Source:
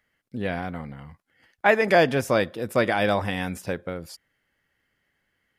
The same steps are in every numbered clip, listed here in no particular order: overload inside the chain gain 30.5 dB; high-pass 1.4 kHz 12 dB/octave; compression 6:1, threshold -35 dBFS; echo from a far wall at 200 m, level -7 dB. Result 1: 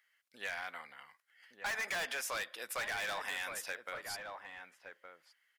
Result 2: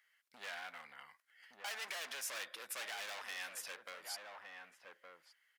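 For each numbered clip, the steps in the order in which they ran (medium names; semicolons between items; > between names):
high-pass > overload inside the chain > echo from a far wall > compression; overload inside the chain > echo from a far wall > compression > high-pass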